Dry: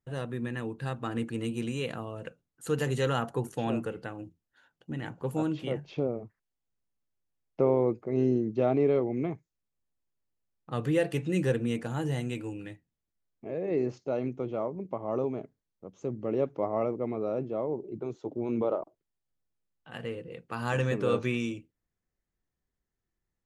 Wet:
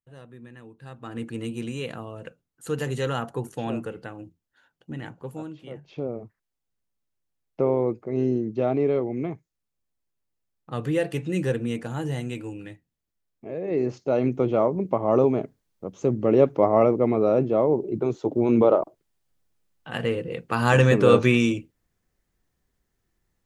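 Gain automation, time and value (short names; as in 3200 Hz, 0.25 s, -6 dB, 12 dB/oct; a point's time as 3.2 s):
0.77 s -11 dB
1.28 s +1 dB
5.02 s +1 dB
5.59 s -9.5 dB
6.18 s +2 dB
13.62 s +2 dB
14.39 s +11 dB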